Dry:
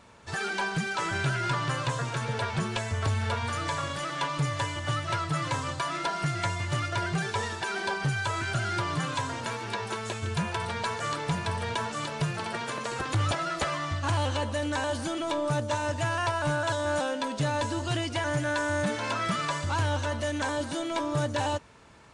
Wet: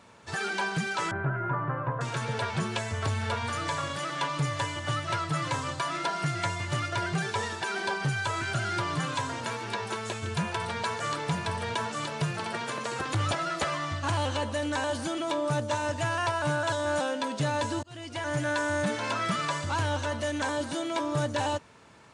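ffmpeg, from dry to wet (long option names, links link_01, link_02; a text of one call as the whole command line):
ffmpeg -i in.wav -filter_complex "[0:a]asettb=1/sr,asplit=3[link_01][link_02][link_03];[link_01]atrim=end=1.114[link_04];[link_02]atrim=start=1.11:end=2.01,asetpts=PTS-STARTPTS,afade=type=in:duration=0.004:curve=qsin,afade=type=out:start_time=0.896:duration=0.004:curve=qsin,lowpass=frequency=1500:width=0.5412,lowpass=frequency=1500:width=1.3066[link_05];[link_03]atrim=start=2.006[link_06];[link_04][link_05]acrossfade=duration=0.004:curve1=hsin:curve2=qsin[link_07];[link_07][link_06]acrossfade=duration=0.004:curve1=qsin:curve2=hsin,asplit=2[link_08][link_09];[link_08]atrim=end=17.83,asetpts=PTS-STARTPTS,afade=type=out:start_time=17.826:duration=0.004:curve=hsin[link_10];[link_09]atrim=start=17.83,asetpts=PTS-STARTPTS,afade=type=in:duration=0.58[link_11];[link_10][link_11]concat=n=2:v=0:a=1,highpass=93" out.wav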